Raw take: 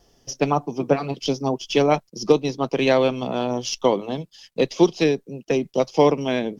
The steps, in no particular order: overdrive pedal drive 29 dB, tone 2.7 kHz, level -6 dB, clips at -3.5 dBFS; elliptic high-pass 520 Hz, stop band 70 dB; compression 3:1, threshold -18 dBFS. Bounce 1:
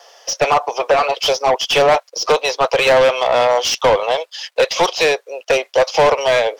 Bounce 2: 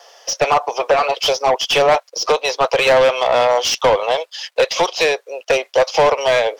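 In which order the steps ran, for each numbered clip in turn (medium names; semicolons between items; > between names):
elliptic high-pass > compression > overdrive pedal; compression > elliptic high-pass > overdrive pedal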